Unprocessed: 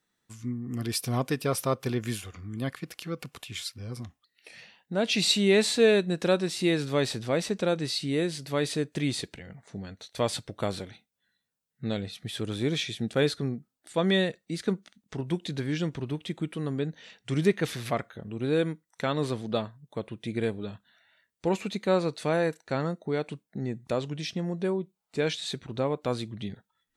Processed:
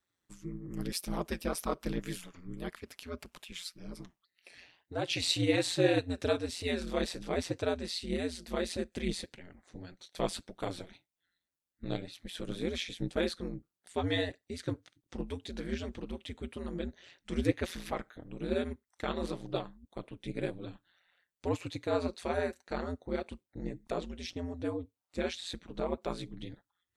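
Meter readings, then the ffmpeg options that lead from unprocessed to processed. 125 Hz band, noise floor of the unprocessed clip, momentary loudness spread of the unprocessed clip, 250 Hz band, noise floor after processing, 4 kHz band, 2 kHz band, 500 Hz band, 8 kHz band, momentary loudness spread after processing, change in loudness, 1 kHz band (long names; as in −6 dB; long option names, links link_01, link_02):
−8.5 dB, −82 dBFS, 14 LU, −6.5 dB, below −85 dBFS, −6.5 dB, −6.5 dB, −7.0 dB, −7.0 dB, 15 LU, −6.5 dB, −5.5 dB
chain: -af "flanger=delay=0.7:depth=8.9:regen=28:speed=1.8:shape=triangular,aeval=exprs='val(0)*sin(2*PI*88*n/s)':channel_layout=same"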